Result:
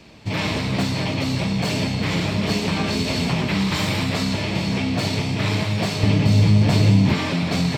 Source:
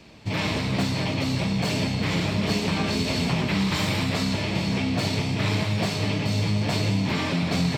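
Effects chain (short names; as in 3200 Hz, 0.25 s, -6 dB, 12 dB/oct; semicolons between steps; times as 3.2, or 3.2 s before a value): 6.03–7.14 low shelf 300 Hz +8.5 dB; gain +2.5 dB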